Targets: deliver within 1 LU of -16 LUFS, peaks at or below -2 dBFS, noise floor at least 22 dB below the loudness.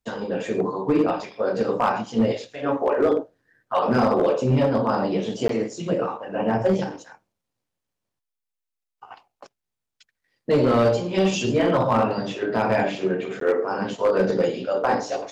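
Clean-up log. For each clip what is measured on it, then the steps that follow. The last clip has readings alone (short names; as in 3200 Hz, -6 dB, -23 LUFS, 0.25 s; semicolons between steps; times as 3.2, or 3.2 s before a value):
clipped 1.0%; flat tops at -13.0 dBFS; dropouts 2; longest dropout 13 ms; loudness -23.0 LUFS; peak -13.0 dBFS; loudness target -16.0 LUFS
-> clip repair -13 dBFS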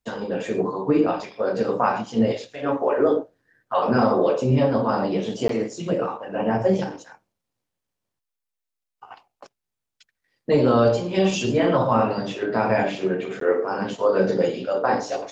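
clipped 0.0%; dropouts 2; longest dropout 13 ms
-> interpolate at 5.48/13.4, 13 ms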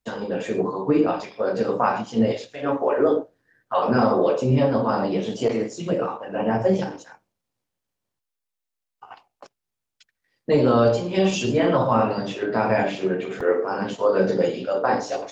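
dropouts 0; loudness -22.5 LUFS; peak -7.0 dBFS; loudness target -16.0 LUFS
-> gain +6.5 dB; limiter -2 dBFS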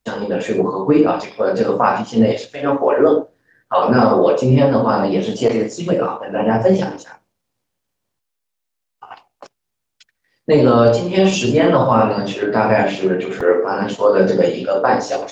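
loudness -16.0 LUFS; peak -2.0 dBFS; noise floor -77 dBFS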